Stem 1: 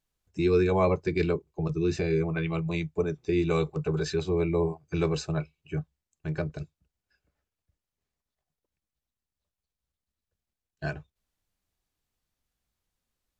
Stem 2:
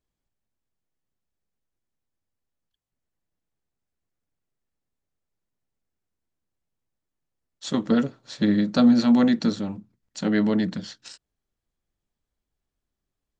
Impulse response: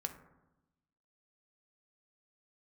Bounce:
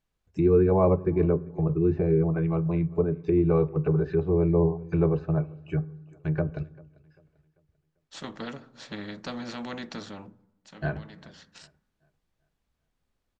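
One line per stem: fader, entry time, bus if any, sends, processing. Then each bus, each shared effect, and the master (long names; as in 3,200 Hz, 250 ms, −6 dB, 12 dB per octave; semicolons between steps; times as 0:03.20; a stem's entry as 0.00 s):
+1.0 dB, 0.00 s, send −8.5 dB, echo send −22 dB, treble cut that deepens with the level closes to 1,000 Hz, closed at −25.5 dBFS
−13.0 dB, 0.50 s, send −10 dB, no echo send, every bin compressed towards the loudest bin 2 to 1; automatic ducking −20 dB, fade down 0.45 s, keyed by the first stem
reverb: on, RT60 0.95 s, pre-delay 3 ms
echo: repeating echo 393 ms, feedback 39%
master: high-shelf EQ 4,900 Hz −12 dB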